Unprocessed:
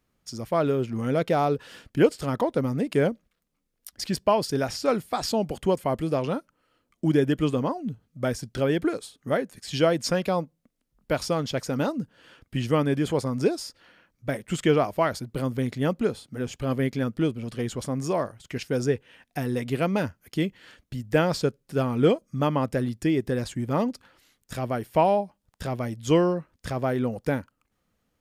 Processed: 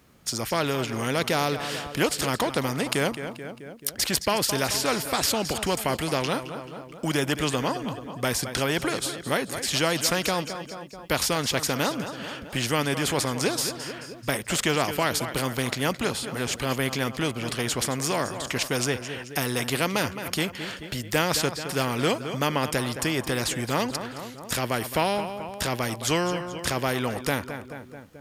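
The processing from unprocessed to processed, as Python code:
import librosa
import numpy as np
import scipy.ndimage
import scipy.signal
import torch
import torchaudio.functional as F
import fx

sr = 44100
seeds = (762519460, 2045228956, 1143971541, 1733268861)

p1 = scipy.signal.sosfilt(scipy.signal.butter(2, 57.0, 'highpass', fs=sr, output='sos'), x)
p2 = p1 + fx.echo_feedback(p1, sr, ms=217, feedback_pct=47, wet_db=-18, dry=0)
p3 = fx.spectral_comp(p2, sr, ratio=2.0)
y = F.gain(torch.from_numpy(p3), 3.0).numpy()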